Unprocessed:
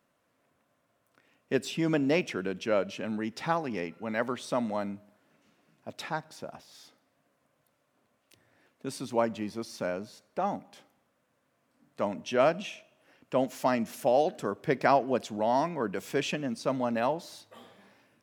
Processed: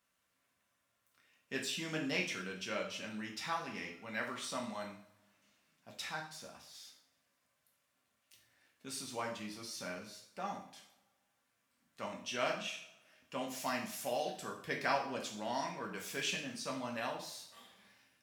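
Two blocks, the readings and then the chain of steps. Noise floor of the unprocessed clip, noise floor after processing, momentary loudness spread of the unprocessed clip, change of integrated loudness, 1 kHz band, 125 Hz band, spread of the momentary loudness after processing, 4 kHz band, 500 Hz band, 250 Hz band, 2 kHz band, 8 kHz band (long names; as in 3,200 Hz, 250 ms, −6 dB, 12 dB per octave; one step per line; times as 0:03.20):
−74 dBFS, −80 dBFS, 15 LU, −9.5 dB, −9.5 dB, −11.5 dB, 14 LU, −0.5 dB, −13.0 dB, −12.0 dB, −3.5 dB, +1.0 dB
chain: guitar amp tone stack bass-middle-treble 5-5-5
coupled-rooms reverb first 0.52 s, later 2 s, from −26 dB, DRR −1 dB
level +3 dB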